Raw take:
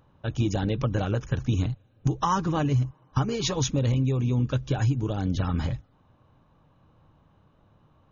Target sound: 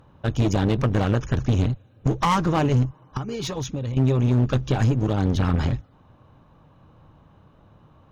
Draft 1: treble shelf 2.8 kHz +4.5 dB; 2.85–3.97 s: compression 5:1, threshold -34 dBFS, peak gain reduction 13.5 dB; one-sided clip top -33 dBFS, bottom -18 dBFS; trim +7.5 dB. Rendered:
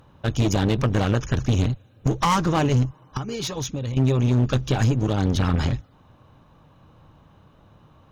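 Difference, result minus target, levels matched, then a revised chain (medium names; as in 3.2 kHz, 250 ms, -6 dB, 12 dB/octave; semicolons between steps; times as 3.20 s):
4 kHz band +3.0 dB
treble shelf 2.8 kHz -3 dB; 2.85–3.97 s: compression 5:1, threshold -34 dBFS, peak gain reduction 13.5 dB; one-sided clip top -33 dBFS, bottom -18 dBFS; trim +7.5 dB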